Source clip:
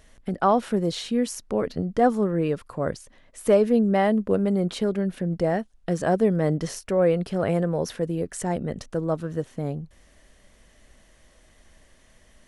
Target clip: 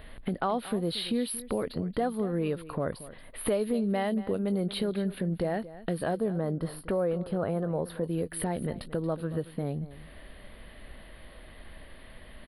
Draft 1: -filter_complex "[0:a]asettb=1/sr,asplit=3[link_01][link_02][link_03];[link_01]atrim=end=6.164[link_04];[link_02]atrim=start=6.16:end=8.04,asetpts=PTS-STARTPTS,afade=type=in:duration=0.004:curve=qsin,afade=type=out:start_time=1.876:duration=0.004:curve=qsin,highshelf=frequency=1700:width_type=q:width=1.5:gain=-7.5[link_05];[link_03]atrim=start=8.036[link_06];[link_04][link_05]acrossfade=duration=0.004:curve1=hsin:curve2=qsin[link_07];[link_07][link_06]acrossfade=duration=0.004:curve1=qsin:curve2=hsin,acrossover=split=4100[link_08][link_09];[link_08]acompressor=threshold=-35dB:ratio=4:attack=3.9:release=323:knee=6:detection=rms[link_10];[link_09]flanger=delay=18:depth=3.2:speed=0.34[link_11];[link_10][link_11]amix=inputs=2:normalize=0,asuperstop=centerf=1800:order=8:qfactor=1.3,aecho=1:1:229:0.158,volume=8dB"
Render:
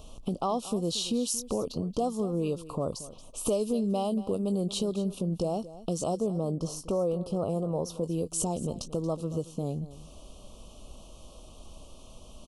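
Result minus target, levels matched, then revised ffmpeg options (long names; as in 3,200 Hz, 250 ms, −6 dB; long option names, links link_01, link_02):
2,000 Hz band −15.0 dB
-filter_complex "[0:a]asettb=1/sr,asplit=3[link_01][link_02][link_03];[link_01]atrim=end=6.164[link_04];[link_02]atrim=start=6.16:end=8.04,asetpts=PTS-STARTPTS,afade=type=in:duration=0.004:curve=qsin,afade=type=out:start_time=1.876:duration=0.004:curve=qsin,highshelf=frequency=1700:width_type=q:width=1.5:gain=-7.5[link_05];[link_03]atrim=start=8.036[link_06];[link_04][link_05]acrossfade=duration=0.004:curve1=hsin:curve2=qsin[link_07];[link_07][link_06]acrossfade=duration=0.004:curve1=qsin:curve2=hsin,acrossover=split=4100[link_08][link_09];[link_08]acompressor=threshold=-35dB:ratio=4:attack=3.9:release=323:knee=6:detection=rms[link_10];[link_09]flanger=delay=18:depth=3.2:speed=0.34[link_11];[link_10][link_11]amix=inputs=2:normalize=0,asuperstop=centerf=6600:order=8:qfactor=1.3,aecho=1:1:229:0.158,volume=8dB"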